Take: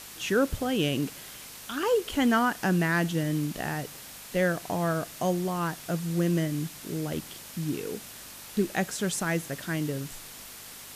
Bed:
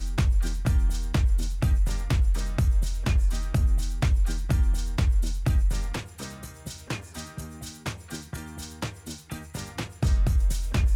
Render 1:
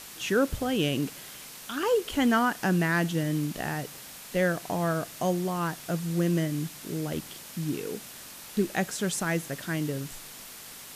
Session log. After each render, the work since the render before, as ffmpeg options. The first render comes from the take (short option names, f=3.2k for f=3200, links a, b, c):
-af "bandreject=f=50:t=h:w=4,bandreject=f=100:t=h:w=4"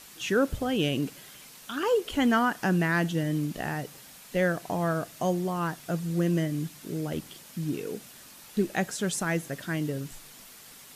-af "afftdn=nr=6:nf=-45"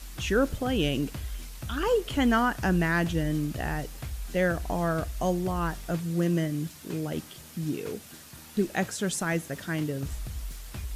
-filter_complex "[1:a]volume=-14dB[a];[0:a][a]amix=inputs=2:normalize=0"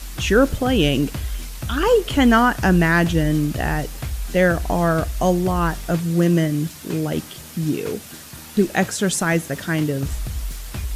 -af "volume=9dB"